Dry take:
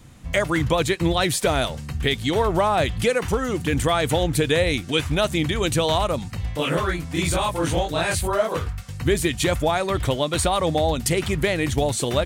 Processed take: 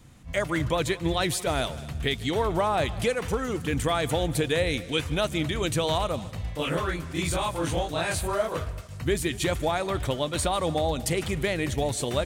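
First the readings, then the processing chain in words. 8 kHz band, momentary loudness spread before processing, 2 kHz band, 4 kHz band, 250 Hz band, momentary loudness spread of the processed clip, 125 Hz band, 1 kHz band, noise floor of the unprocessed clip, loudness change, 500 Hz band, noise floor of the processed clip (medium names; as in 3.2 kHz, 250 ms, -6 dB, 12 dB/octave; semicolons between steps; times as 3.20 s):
-5.0 dB, 4 LU, -5.0 dB, -5.0 dB, -5.0 dB, 5 LU, -5.0 dB, -5.0 dB, -33 dBFS, -5.0 dB, -5.0 dB, -39 dBFS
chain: multi-head delay 75 ms, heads second and third, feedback 43%, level -20 dB; attacks held to a fixed rise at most 250 dB/s; trim -5 dB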